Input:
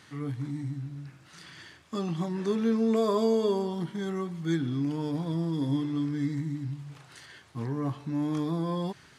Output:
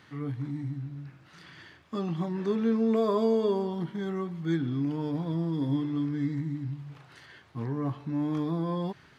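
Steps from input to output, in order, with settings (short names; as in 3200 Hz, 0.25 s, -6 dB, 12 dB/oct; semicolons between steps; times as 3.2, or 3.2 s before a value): bell 8600 Hz -12.5 dB 1.5 oct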